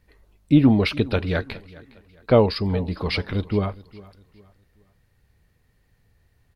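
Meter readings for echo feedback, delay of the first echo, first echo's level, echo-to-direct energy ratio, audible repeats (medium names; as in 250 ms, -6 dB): 35%, 411 ms, -21.0 dB, -20.5 dB, 2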